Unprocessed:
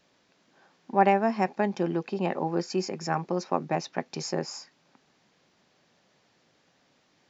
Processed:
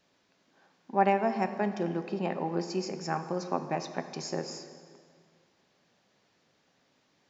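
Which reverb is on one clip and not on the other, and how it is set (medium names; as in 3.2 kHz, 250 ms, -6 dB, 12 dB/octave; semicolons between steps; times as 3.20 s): plate-style reverb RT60 2.1 s, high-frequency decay 0.75×, DRR 8.5 dB; trim -4 dB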